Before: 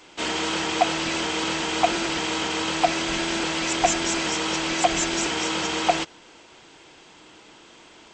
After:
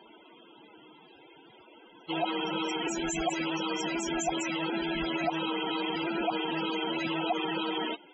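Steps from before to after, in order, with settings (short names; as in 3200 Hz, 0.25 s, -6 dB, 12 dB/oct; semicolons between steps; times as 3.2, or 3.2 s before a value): whole clip reversed; limiter -17.5 dBFS, peak gain reduction 10.5 dB; loudest bins only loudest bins 32; gain -1.5 dB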